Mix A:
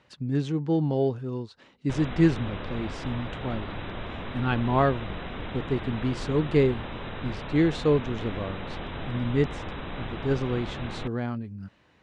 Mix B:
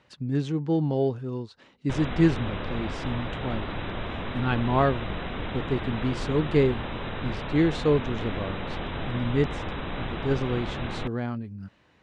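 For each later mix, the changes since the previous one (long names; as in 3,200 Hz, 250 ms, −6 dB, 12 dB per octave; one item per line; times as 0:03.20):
background +3.0 dB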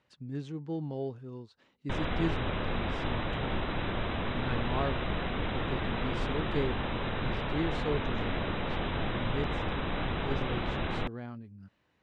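speech −11.0 dB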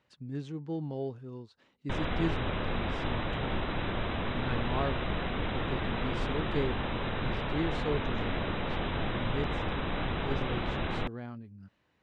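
nothing changed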